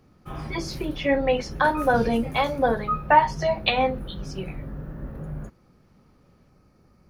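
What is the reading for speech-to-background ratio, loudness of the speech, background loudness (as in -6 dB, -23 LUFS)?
11.5 dB, -23.5 LUFS, -35.0 LUFS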